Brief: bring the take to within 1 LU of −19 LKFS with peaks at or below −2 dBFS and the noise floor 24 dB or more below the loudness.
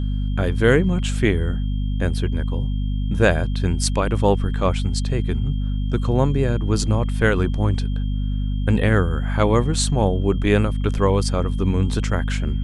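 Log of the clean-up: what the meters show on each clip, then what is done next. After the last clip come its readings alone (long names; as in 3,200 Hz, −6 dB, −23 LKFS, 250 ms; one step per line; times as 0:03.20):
mains hum 50 Hz; hum harmonics up to 250 Hz; level of the hum −20 dBFS; interfering tone 3,200 Hz; level of the tone −46 dBFS; integrated loudness −21.0 LKFS; sample peak −1.5 dBFS; target loudness −19.0 LKFS
→ mains-hum notches 50/100/150/200/250 Hz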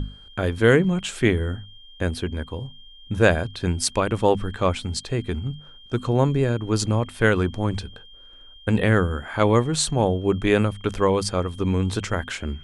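mains hum none found; interfering tone 3,200 Hz; level of the tone −46 dBFS
→ notch filter 3,200 Hz, Q 30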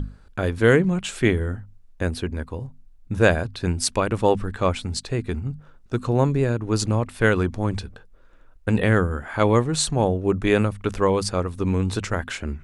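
interfering tone none found; integrated loudness −23.0 LKFS; sample peak −2.5 dBFS; target loudness −19.0 LKFS
→ level +4 dB
brickwall limiter −2 dBFS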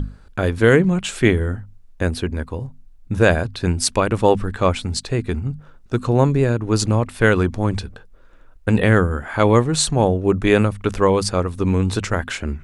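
integrated loudness −19.0 LKFS; sample peak −2.0 dBFS; background noise floor −46 dBFS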